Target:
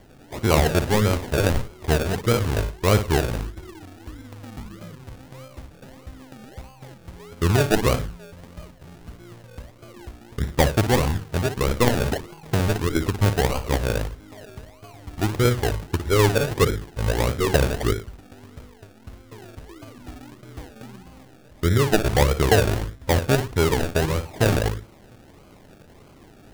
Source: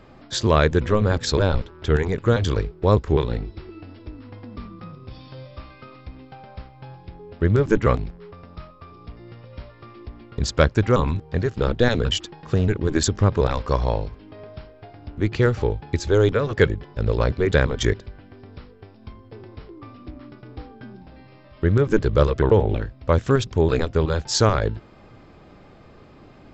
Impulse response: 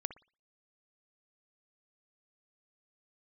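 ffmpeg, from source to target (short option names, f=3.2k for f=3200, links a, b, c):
-filter_complex "[0:a]aresample=8000,aresample=44100[a];[1:a]atrim=start_sample=2205,atrim=end_sample=6615[b];[a][b]afir=irnorm=-1:irlink=0,acrusher=samples=34:mix=1:aa=0.000001:lfo=1:lforange=20.4:lforate=1.6"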